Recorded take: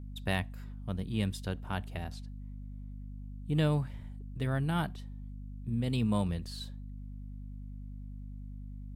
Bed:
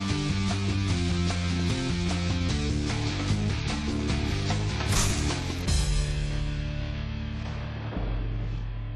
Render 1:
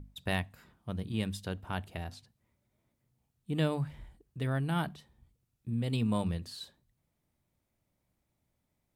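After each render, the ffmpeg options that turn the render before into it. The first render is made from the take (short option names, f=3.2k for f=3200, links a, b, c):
-af "bandreject=f=50:t=h:w=6,bandreject=f=100:t=h:w=6,bandreject=f=150:t=h:w=6,bandreject=f=200:t=h:w=6,bandreject=f=250:t=h:w=6"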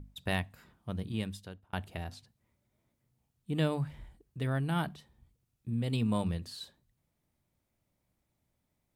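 -filter_complex "[0:a]asplit=2[a][b];[a]atrim=end=1.73,asetpts=PTS-STARTPTS,afade=t=out:st=1.07:d=0.66[c];[b]atrim=start=1.73,asetpts=PTS-STARTPTS,afade=t=in:d=0.004:c=hsin[d];[c][d]concat=n=2:v=0:a=1"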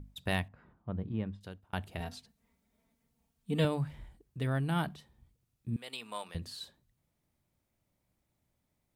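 -filter_complex "[0:a]asettb=1/sr,asplit=3[a][b][c];[a]atrim=end=0.484[d];[b]atrim=start=0.48:end=1.41,asetpts=PTS-STARTPTS,afade=t=in:d=0.004:c=qsin,afade=t=out:st=0.926:d=0.004:c=qsin,lowpass=1.4k[e];[c]atrim=start=1.406[f];[d][e]acrossfade=d=0.004:c1=hsin:c2=qsin[g];[g][f]acrossfade=d=0.004:c1=qsin:c2=hsin,asettb=1/sr,asplit=3[h][i][j];[h]atrim=end=2.004[k];[i]atrim=start=2:end=3.65,asetpts=PTS-STARTPTS,afade=t=in:d=0.004:c=qsin,afade=t=out:st=1.646:d=0.004:c=qsin,aecho=1:1:4.4:0.91,atrim=end_sample=72765[l];[j]atrim=start=3.646[m];[k][l]acrossfade=d=0.004:c1=hsin:c2=qsin[n];[n][m]acrossfade=d=0.004:c1=qsin:c2=hsin,asettb=1/sr,asplit=3[o][p][q];[o]atrim=end=5.764[r];[p]atrim=start=5.76:end=6.35,asetpts=PTS-STARTPTS,afade=t=in:d=0.004:c=qsin,afade=t=out:st=0.586:d=0.004:c=qsin,highpass=830[s];[q]atrim=start=6.346[t];[r][s]acrossfade=d=0.004:c1=hsin:c2=qsin[u];[u][t]acrossfade=d=0.004:c1=qsin:c2=hsin"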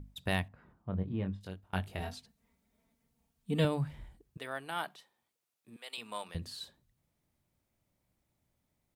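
-filter_complex "[0:a]asplit=3[a][b][c];[a]afade=t=out:st=0.92:d=0.02[d];[b]asplit=2[e][f];[f]adelay=21,volume=-5dB[g];[e][g]amix=inputs=2:normalize=0,afade=t=in:st=0.92:d=0.02,afade=t=out:st=2.13:d=0.02[h];[c]afade=t=in:st=2.13:d=0.02[i];[d][h][i]amix=inputs=3:normalize=0,asettb=1/sr,asplit=3[j][k][l];[j]atrim=end=4.374[m];[k]atrim=start=4.37:end=5.98,asetpts=PTS-STARTPTS,afade=t=in:d=0.004:c=qsin,afade=t=out:st=1.606:d=0.004:c=qsin,highpass=570[n];[l]atrim=start=5.976[o];[m][n]acrossfade=d=0.004:c1=hsin:c2=qsin[p];[p][o]acrossfade=d=0.004:c1=qsin:c2=hsin"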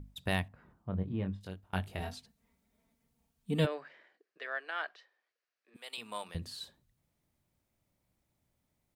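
-filter_complex "[0:a]asplit=3[a][b][c];[a]afade=t=out:st=3.65:d=0.02[d];[b]highpass=f=410:w=0.5412,highpass=f=410:w=1.3066,equalizer=f=880:t=q:w=4:g=-9,equalizer=f=1.7k:t=q:w=4:g=8,equalizer=f=3.5k:t=q:w=4:g=-6,lowpass=f=5.1k:w=0.5412,lowpass=f=5.1k:w=1.3066,afade=t=in:st=3.65:d=0.02,afade=t=out:st=5.74:d=0.02[e];[c]afade=t=in:st=5.74:d=0.02[f];[d][e][f]amix=inputs=3:normalize=0"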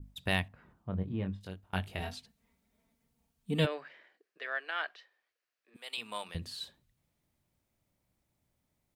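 -af "adynamicequalizer=threshold=0.00282:dfrequency=2800:dqfactor=1:tfrequency=2800:tqfactor=1:attack=5:release=100:ratio=0.375:range=2.5:mode=boostabove:tftype=bell"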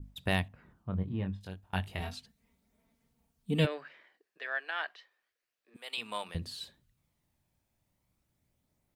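-af "aphaser=in_gain=1:out_gain=1:delay=1.2:decay=0.24:speed=0.33:type=sinusoidal"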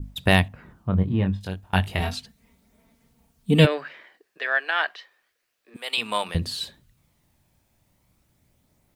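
-af "volume=12dB"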